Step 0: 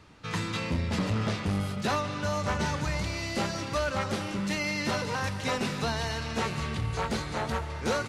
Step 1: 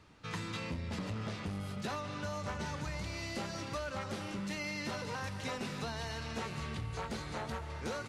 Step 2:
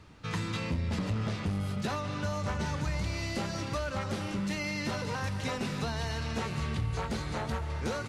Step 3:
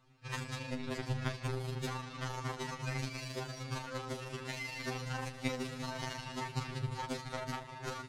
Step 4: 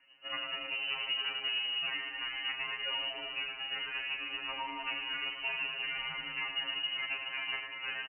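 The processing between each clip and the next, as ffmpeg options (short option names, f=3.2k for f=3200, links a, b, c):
-af "acompressor=threshold=-29dB:ratio=6,volume=-6dB"
-af "lowshelf=f=180:g=6,volume=4dB"
-af "tremolo=f=26:d=0.667,aeval=exprs='0.0891*(cos(1*acos(clip(val(0)/0.0891,-1,1)))-cos(1*PI/2))+0.0251*(cos(3*acos(clip(val(0)/0.0891,-1,1)))-cos(3*PI/2))':c=same,afftfilt=real='re*2.45*eq(mod(b,6),0)':imag='im*2.45*eq(mod(b,6),0)':win_size=2048:overlap=0.75,volume=9.5dB"
-af "asoftclip=type=tanh:threshold=-30.5dB,aecho=1:1:99:0.447,lowpass=f=2.6k:t=q:w=0.5098,lowpass=f=2.6k:t=q:w=0.6013,lowpass=f=2.6k:t=q:w=0.9,lowpass=f=2.6k:t=q:w=2.563,afreqshift=-3000,volume=3.5dB"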